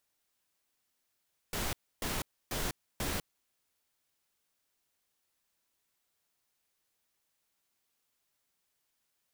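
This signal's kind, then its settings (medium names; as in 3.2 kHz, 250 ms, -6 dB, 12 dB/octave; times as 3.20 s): noise bursts pink, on 0.20 s, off 0.29 s, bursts 4, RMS -34.5 dBFS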